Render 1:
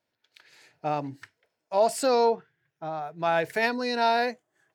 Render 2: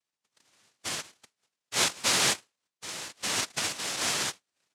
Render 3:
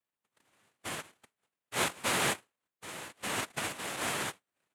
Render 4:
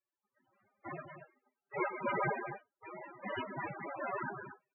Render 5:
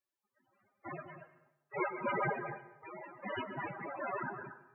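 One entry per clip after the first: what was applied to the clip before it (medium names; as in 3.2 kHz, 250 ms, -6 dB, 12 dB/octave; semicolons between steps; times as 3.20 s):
ladder high-pass 400 Hz, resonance 45%; noise-vocoded speech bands 1
peaking EQ 5.3 kHz -14.5 dB 1.2 oct
loudspeakers at several distances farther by 44 m -10 dB, 79 m -9 dB; gated-style reverb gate 80 ms falling, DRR 9 dB; loudest bins only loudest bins 8; trim +4 dB
plate-style reverb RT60 0.88 s, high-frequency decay 0.8×, pre-delay 115 ms, DRR 14.5 dB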